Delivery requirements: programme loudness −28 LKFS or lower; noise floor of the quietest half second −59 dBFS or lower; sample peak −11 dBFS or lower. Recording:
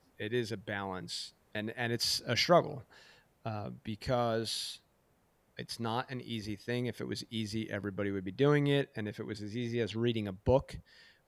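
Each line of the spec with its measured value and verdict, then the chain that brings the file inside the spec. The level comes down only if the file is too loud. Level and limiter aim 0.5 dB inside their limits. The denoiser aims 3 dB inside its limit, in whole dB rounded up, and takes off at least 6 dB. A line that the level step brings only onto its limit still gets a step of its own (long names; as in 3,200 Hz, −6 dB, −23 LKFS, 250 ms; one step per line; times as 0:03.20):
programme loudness −34.0 LKFS: in spec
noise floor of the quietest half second −71 dBFS: in spec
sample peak −13.0 dBFS: in spec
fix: no processing needed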